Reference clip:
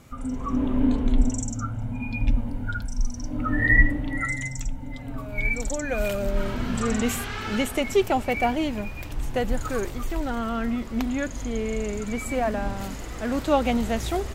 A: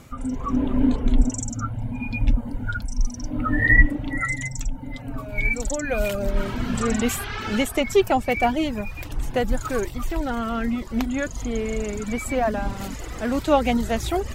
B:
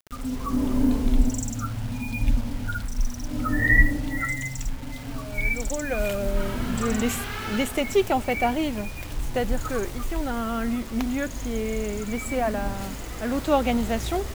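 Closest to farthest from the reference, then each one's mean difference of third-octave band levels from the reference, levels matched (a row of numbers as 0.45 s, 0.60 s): A, B; 1.5 dB, 3.5 dB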